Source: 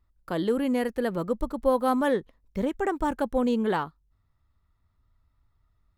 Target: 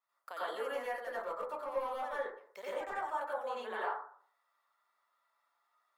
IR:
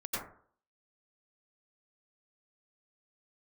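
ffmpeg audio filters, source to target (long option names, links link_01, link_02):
-filter_complex "[0:a]highpass=frequency=630:width=0.5412,highpass=frequency=630:width=1.3066,acompressor=threshold=-42dB:ratio=3,asettb=1/sr,asplit=3[link_01][link_02][link_03];[link_01]atrim=end=0.644[link_04];[link_02]atrim=start=0.64:end=2.9,asetpts=PTS-STARTPTS,afade=type=in:duration=0.004:curve=qsin,afade=type=out:start_time=2.256:duration=0.004:curve=qsin,asoftclip=type=hard:threshold=-36dB[link_05];[link_03]atrim=start=2.896[link_06];[link_04][link_05]acrossfade=duration=0.004:curve1=hsin:curve2=qsin[link_07];[link_07][link_06]acrossfade=duration=0.004:curve1=qsin:curve2=hsin[link_08];[1:a]atrim=start_sample=2205[link_09];[link_08][link_09]afir=irnorm=-1:irlink=0,adynamicequalizer=threshold=0.00112:dfrequency=3200:dqfactor=0.7:tfrequency=3200:tqfactor=0.7:attack=5:release=100:ratio=0.375:range=3:mode=cutabove:tftype=highshelf,volume=1dB"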